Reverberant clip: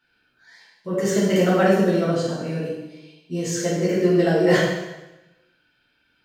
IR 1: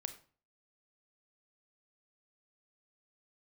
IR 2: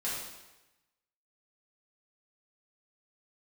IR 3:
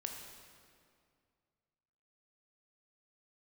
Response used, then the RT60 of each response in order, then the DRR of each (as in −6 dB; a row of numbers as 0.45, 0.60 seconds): 2; 0.40, 1.0, 2.2 seconds; 8.5, −9.0, 2.0 decibels